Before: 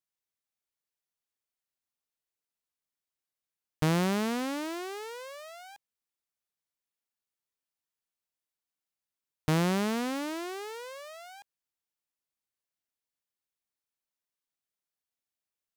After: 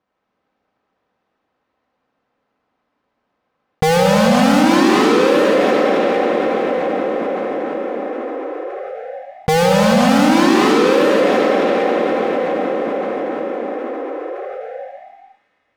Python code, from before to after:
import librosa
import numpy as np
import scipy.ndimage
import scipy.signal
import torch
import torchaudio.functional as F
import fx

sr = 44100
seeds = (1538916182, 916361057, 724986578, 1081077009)

y = fx.halfwave_hold(x, sr)
y = fx.highpass(y, sr, hz=140.0, slope=6)
y = fx.env_lowpass(y, sr, base_hz=1000.0, full_db=-26.5)
y = scipy.signal.sosfilt(scipy.signal.butter(2, 6300.0, 'lowpass', fs=sr, output='sos'), y)
y = fx.high_shelf(y, sr, hz=3600.0, db=10.5)
y = y + 0.32 * np.pad(y, (int(3.9 * sr / 1000.0), 0))[:len(y)]
y = fx.dynamic_eq(y, sr, hz=640.0, q=0.97, threshold_db=-41.0, ratio=4.0, max_db=7)
y = fx.leveller(y, sr, passes=5)
y = fx.echo_wet_highpass(y, sr, ms=274, feedback_pct=56, hz=2300.0, wet_db=-16)
y = fx.rev_freeverb(y, sr, rt60_s=4.4, hf_ratio=0.65, predelay_ms=35, drr_db=-3.5)
y = fx.env_flatten(y, sr, amount_pct=70)
y = y * librosa.db_to_amplitude(-5.5)